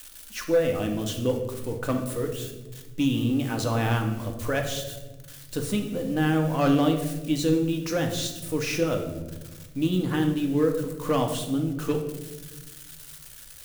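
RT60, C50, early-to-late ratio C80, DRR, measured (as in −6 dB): 1.2 s, 7.0 dB, 10.0 dB, 3.0 dB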